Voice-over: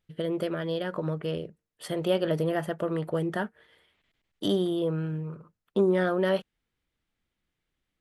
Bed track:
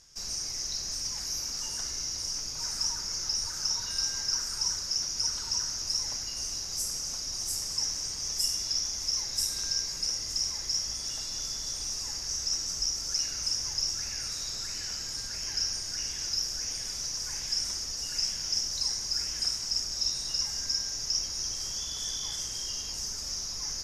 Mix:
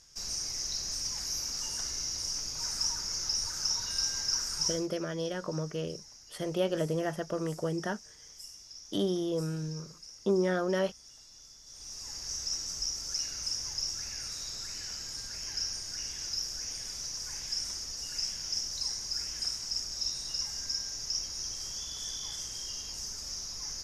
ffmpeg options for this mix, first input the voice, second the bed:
ffmpeg -i stem1.wav -i stem2.wav -filter_complex "[0:a]adelay=4500,volume=-4dB[link_01];[1:a]volume=13.5dB,afade=type=out:start_time=4.67:duration=0.21:silence=0.133352,afade=type=in:start_time=11.65:duration=0.63:silence=0.188365[link_02];[link_01][link_02]amix=inputs=2:normalize=0" out.wav

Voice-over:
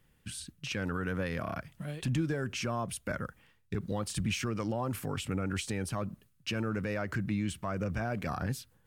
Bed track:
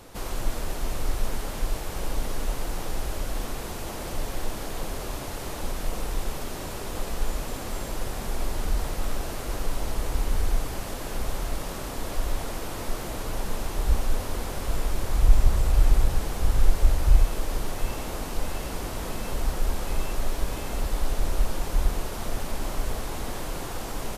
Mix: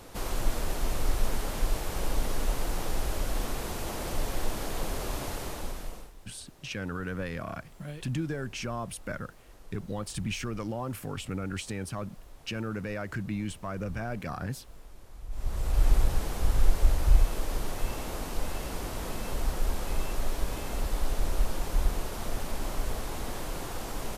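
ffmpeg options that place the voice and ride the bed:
ffmpeg -i stem1.wav -i stem2.wav -filter_complex "[0:a]adelay=6000,volume=-1dB[link_01];[1:a]volume=19.5dB,afade=type=out:start_time=5.28:duration=0.84:silence=0.0749894,afade=type=in:start_time=15.3:duration=0.61:silence=0.1[link_02];[link_01][link_02]amix=inputs=2:normalize=0" out.wav

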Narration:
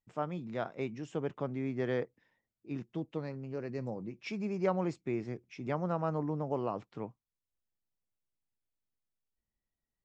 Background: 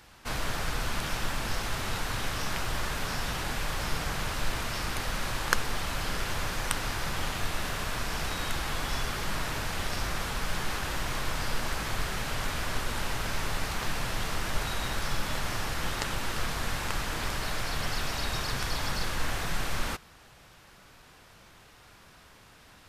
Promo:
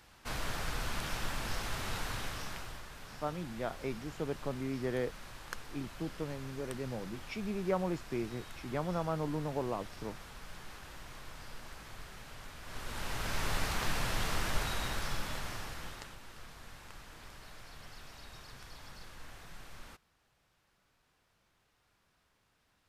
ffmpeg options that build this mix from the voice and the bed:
ffmpeg -i stem1.wav -i stem2.wav -filter_complex "[0:a]adelay=3050,volume=-1.5dB[link_01];[1:a]volume=9.5dB,afade=type=out:start_time=2.05:duration=0.79:silence=0.266073,afade=type=in:start_time=12.62:duration=0.91:silence=0.177828,afade=type=out:start_time=14.39:duration=1.79:silence=0.133352[link_02];[link_01][link_02]amix=inputs=2:normalize=0" out.wav

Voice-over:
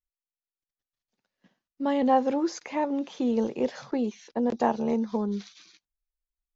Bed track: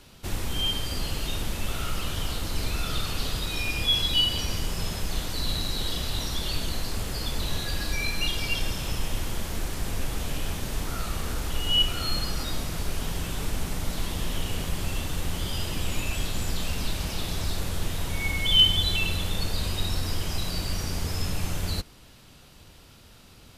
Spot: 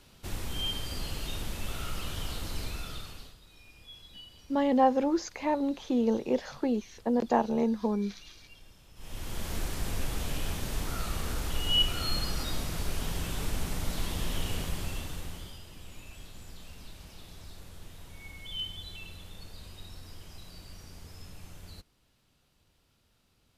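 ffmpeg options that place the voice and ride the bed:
ffmpeg -i stem1.wav -i stem2.wav -filter_complex "[0:a]adelay=2700,volume=-1dB[link_01];[1:a]volume=17.5dB,afade=type=out:start_time=2.5:duration=0.86:silence=0.0944061,afade=type=in:start_time=8.95:duration=0.57:silence=0.0668344,afade=type=out:start_time=14.51:duration=1.1:silence=0.16788[link_02];[link_01][link_02]amix=inputs=2:normalize=0" out.wav

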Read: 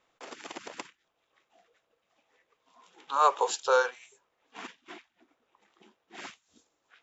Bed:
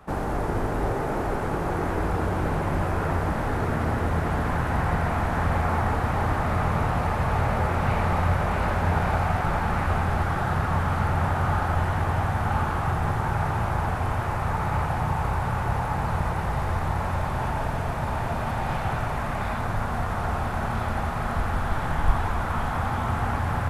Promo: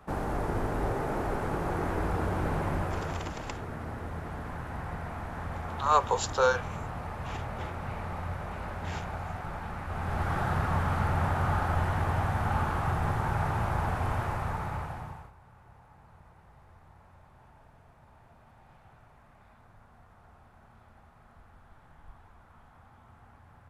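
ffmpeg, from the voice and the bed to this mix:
ffmpeg -i stem1.wav -i stem2.wav -filter_complex "[0:a]adelay=2700,volume=-0.5dB[link_01];[1:a]volume=4.5dB,afade=type=out:start_time=2.66:duration=0.67:silence=0.375837,afade=type=in:start_time=9.88:duration=0.47:silence=0.354813,afade=type=out:start_time=14.18:duration=1.14:silence=0.0501187[link_02];[link_01][link_02]amix=inputs=2:normalize=0" out.wav

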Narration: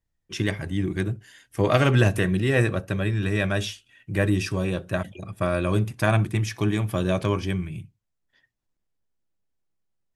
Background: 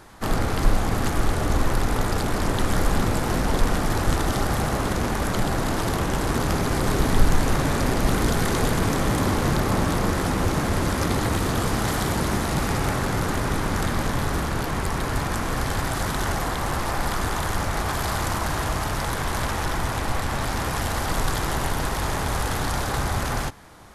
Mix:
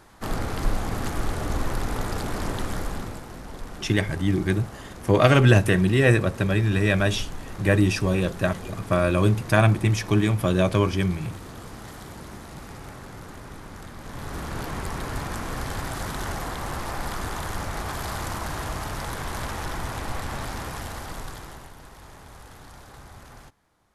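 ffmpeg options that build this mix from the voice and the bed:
ffmpeg -i stem1.wav -i stem2.wav -filter_complex "[0:a]adelay=3500,volume=3dB[link_01];[1:a]volume=6dB,afade=type=out:start_time=2.47:duration=0.81:silence=0.266073,afade=type=in:start_time=14:duration=0.61:silence=0.281838,afade=type=out:start_time=20.34:duration=1.37:silence=0.177828[link_02];[link_01][link_02]amix=inputs=2:normalize=0" out.wav

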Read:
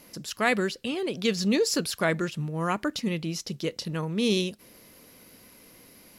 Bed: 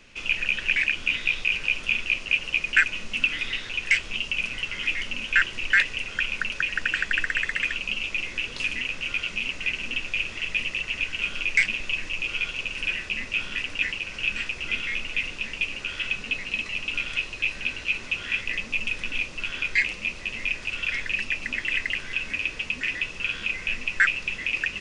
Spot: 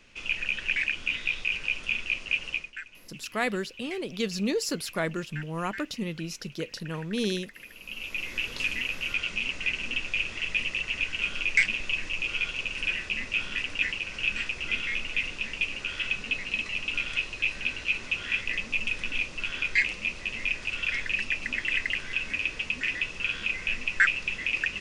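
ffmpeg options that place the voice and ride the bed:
ffmpeg -i stem1.wav -i stem2.wav -filter_complex "[0:a]adelay=2950,volume=-4dB[link_01];[1:a]volume=15dB,afade=type=out:start_time=2.5:duration=0.21:silence=0.149624,afade=type=in:start_time=7.74:duration=0.66:silence=0.105925[link_02];[link_01][link_02]amix=inputs=2:normalize=0" out.wav

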